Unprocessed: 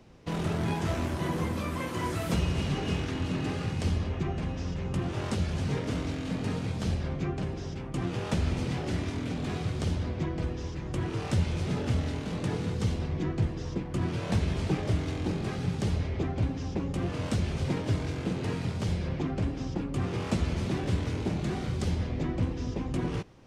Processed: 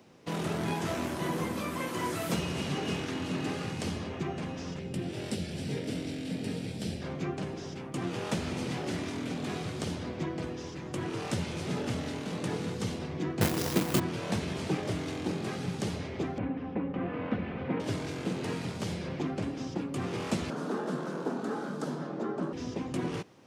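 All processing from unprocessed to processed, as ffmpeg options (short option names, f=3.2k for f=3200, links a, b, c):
-filter_complex "[0:a]asettb=1/sr,asplit=3[a][b][c];[a]atrim=end=4.794[d];[b]atrim=start=4.79:end=7.02,asetpts=PTS-STARTPTS,afade=t=in:d=0.004:c=qsin,afade=t=out:st=2.226:d=0.004:c=qsin,equalizer=f=1.1k:w=1.5:g=-14.5,bandreject=f=6.5k:w=7[e];[c]atrim=start=7.016[f];[d][e]acrossfade=d=0.004:c1=hsin:c2=qsin[g];[g][f]acrossfade=d=0.004:c1=qsin:c2=hsin,asettb=1/sr,asplit=3[h][i][j];[h]atrim=end=13.414[k];[i]atrim=start=13.41:end=14,asetpts=PTS-STARTPTS,afade=t=in:d=0.004:c=qsin,afade=t=out:st=0.586:d=0.004:c=qsin,bandreject=f=60:t=h:w=6,bandreject=f=120:t=h:w=6,acontrast=82,acrusher=bits=2:mode=log:mix=0:aa=0.000001[l];[j]atrim=start=13.996[m];[k][l]acrossfade=d=0.004:c1=hsin:c2=qsin[n];[n][m]acrossfade=d=0.004:c1=qsin:c2=hsin,asettb=1/sr,asplit=3[o][p][q];[o]atrim=end=16.384[r];[p]atrim=start=16.38:end=17.8,asetpts=PTS-STARTPTS,afade=t=in:d=0.004:c=qsin,afade=t=out:st=1.416:d=0.004:c=qsin,lowpass=f=2.4k:w=0.5412,lowpass=f=2.4k:w=1.3066,aecho=1:1:4:0.38,atrim=end_sample=62622[s];[q]atrim=start=17.796[t];[r][s]acrossfade=d=0.004:c1=hsin:c2=qsin[u];[u][t]acrossfade=d=0.004:c1=qsin:c2=hsin,asettb=1/sr,asplit=3[v][w][x];[v]atrim=end=20.504[y];[w]atrim=start=20.5:end=22.53,asetpts=PTS-STARTPTS,afade=t=in:d=0.004:c=qsin,afade=t=out:st=2.026:d=0.004:c=qsin,highpass=f=180:p=1,highshelf=f=1.7k:t=q:w=3:g=-7,afreqshift=71[z];[x]atrim=start=22.526[aa];[y][z]acrossfade=d=0.004:c1=hsin:c2=qsin[ab];[ab][aa]acrossfade=d=0.004:c1=qsin:c2=hsin,highpass=170,highshelf=f=9.7k:g=7"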